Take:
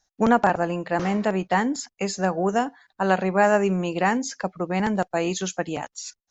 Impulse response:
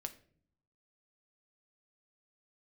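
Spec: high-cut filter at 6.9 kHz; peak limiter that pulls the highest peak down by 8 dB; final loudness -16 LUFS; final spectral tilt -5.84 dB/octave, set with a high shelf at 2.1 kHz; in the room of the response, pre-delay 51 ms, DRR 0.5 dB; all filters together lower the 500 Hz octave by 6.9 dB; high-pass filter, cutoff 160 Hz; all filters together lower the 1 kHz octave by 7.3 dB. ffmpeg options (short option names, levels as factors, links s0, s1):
-filter_complex "[0:a]highpass=160,lowpass=6900,equalizer=f=500:t=o:g=-7,equalizer=f=1000:t=o:g=-5.5,highshelf=f=2100:g=-7.5,alimiter=limit=0.126:level=0:latency=1,asplit=2[s0][s1];[1:a]atrim=start_sample=2205,adelay=51[s2];[s1][s2]afir=irnorm=-1:irlink=0,volume=1.26[s3];[s0][s3]amix=inputs=2:normalize=0,volume=3.76"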